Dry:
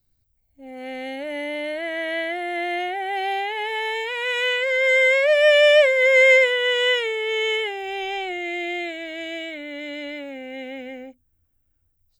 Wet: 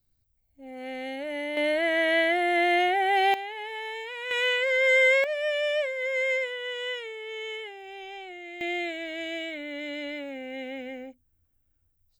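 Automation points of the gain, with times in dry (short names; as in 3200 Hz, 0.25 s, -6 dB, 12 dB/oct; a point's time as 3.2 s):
-3.5 dB
from 1.57 s +3 dB
from 3.34 s -9.5 dB
from 4.31 s -3 dB
from 5.24 s -13 dB
from 8.61 s -2.5 dB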